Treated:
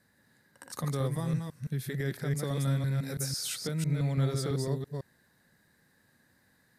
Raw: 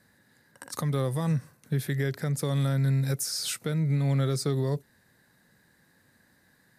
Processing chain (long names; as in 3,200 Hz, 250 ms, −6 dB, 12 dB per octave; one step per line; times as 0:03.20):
delay that plays each chunk backwards 167 ms, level −3 dB
0:01.24–0:01.90: parametric band 680 Hz −5.5 dB 2 octaves
level −5 dB